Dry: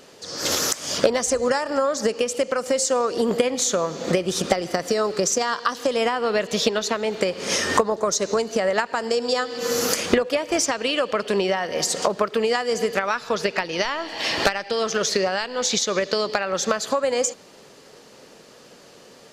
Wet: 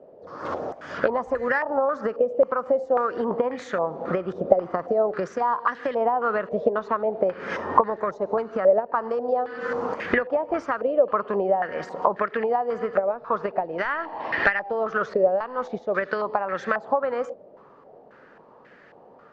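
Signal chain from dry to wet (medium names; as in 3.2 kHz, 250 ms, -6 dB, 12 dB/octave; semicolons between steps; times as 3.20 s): wow and flutter 20 cents; step-sequenced low-pass 3.7 Hz 610–1800 Hz; trim -5.5 dB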